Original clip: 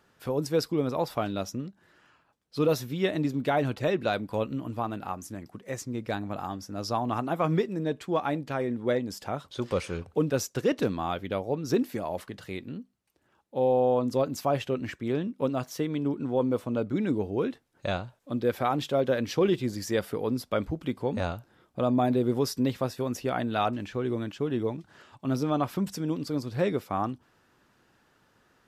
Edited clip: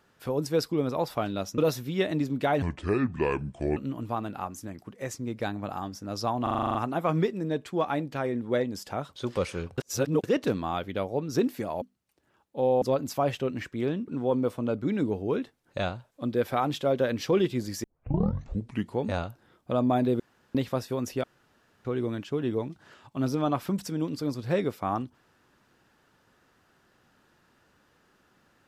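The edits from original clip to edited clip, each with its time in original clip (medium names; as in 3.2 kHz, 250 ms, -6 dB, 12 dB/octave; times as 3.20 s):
1.58–2.62 s: delete
3.66–4.44 s: speed 68%
7.10 s: stutter 0.04 s, 9 plays
10.13–10.59 s: reverse
12.17–12.80 s: delete
13.80–14.09 s: delete
15.35–16.16 s: delete
19.92 s: tape start 1.15 s
22.28–22.63 s: room tone
23.32–23.93 s: room tone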